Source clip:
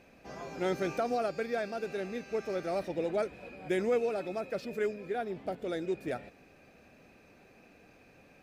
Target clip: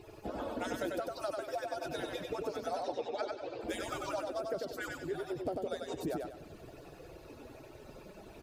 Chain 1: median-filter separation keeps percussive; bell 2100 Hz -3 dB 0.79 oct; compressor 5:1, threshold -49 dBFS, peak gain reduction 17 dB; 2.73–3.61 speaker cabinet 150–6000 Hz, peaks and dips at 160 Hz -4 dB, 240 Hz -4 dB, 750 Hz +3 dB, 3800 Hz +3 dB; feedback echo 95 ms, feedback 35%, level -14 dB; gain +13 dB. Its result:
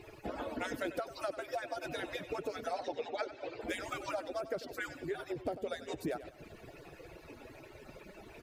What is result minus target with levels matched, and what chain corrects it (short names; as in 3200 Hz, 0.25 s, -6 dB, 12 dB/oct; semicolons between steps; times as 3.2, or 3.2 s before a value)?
echo-to-direct -10.5 dB; 2000 Hz band +3.5 dB
median-filter separation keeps percussive; bell 2100 Hz -11.5 dB 0.79 oct; compressor 5:1, threshold -49 dBFS, peak gain reduction 16.5 dB; 2.73–3.61 speaker cabinet 150–6000 Hz, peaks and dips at 160 Hz -4 dB, 240 Hz -4 dB, 750 Hz +3 dB, 3800 Hz +3 dB; feedback echo 95 ms, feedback 35%, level -3.5 dB; gain +13 dB